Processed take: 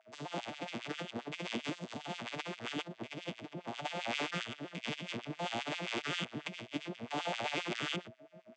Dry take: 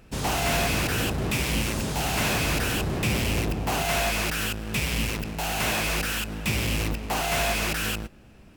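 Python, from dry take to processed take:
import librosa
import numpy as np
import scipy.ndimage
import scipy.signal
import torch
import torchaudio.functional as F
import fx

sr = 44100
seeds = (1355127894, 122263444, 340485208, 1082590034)

y = fx.vocoder_arp(x, sr, chord='major triad', root=46, every_ms=122)
y = fx.dynamic_eq(y, sr, hz=3300.0, q=1.9, threshold_db=-55.0, ratio=4.0, max_db=6)
y = fx.over_compress(y, sr, threshold_db=-32.0, ratio=-1.0)
y = y + 10.0 ** (-51.0 / 20.0) * np.sin(2.0 * np.pi * 640.0 * np.arange(len(y)) / sr)
y = fx.filter_lfo_highpass(y, sr, shape='sine', hz=7.5, low_hz=220.0, high_hz=2900.0, q=1.2)
y = F.gain(torch.from_numpy(y), -4.5).numpy()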